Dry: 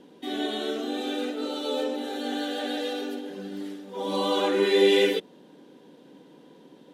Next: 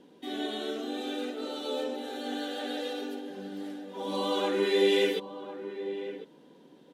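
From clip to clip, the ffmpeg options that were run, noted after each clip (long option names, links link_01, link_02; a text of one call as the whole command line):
ffmpeg -i in.wav -filter_complex "[0:a]asplit=2[link_01][link_02];[link_02]adelay=1050,volume=-11dB,highshelf=frequency=4000:gain=-23.6[link_03];[link_01][link_03]amix=inputs=2:normalize=0,volume=-4.5dB" out.wav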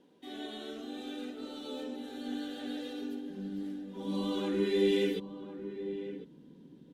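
ffmpeg -i in.wav -filter_complex "[0:a]asubboost=boost=10.5:cutoff=210,acrossover=split=6200[link_01][link_02];[link_02]acrusher=bits=5:mode=log:mix=0:aa=0.000001[link_03];[link_01][link_03]amix=inputs=2:normalize=0,volume=-7.5dB" out.wav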